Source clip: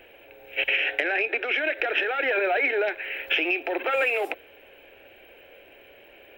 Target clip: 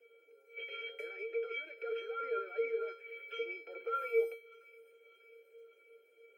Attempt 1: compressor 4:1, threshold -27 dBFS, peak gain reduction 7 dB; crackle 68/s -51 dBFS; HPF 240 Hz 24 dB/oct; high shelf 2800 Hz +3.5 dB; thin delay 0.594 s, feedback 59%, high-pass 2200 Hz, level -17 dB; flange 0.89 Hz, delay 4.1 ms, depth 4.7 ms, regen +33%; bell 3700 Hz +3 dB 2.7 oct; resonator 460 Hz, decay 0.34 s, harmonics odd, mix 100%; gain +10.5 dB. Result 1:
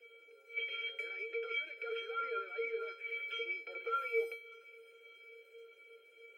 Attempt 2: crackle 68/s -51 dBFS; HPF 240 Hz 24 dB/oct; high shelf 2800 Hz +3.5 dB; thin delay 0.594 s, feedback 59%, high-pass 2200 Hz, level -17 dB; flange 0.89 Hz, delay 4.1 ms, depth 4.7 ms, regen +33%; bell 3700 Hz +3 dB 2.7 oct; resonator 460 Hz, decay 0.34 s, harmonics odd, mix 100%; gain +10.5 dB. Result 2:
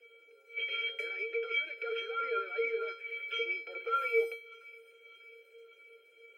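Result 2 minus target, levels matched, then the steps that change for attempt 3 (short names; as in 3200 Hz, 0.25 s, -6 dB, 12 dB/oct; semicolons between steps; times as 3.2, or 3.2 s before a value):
4000 Hz band +6.0 dB
change: bell 3700 Hz -8 dB 2.7 oct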